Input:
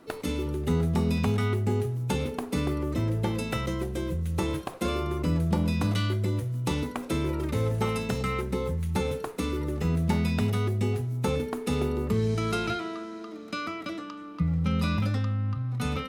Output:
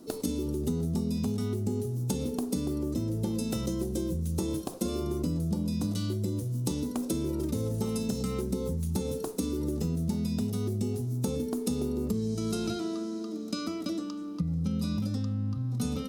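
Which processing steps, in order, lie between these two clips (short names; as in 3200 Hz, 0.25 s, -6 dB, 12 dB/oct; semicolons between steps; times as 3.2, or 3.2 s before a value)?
EQ curve 140 Hz 0 dB, 220 Hz +8 dB, 2100 Hz -13 dB, 5400 Hz +8 dB; compressor, threshold -27 dBFS, peak gain reduction 11 dB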